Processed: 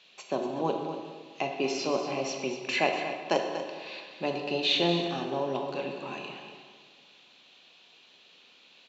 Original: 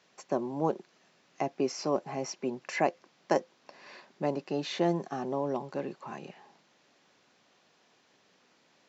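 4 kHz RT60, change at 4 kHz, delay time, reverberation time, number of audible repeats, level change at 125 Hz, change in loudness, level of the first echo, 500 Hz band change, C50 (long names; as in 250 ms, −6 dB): 1.1 s, +12.5 dB, 239 ms, 1.6 s, 1, 0.0 dB, +2.5 dB, −10.5 dB, +1.5 dB, 3.5 dB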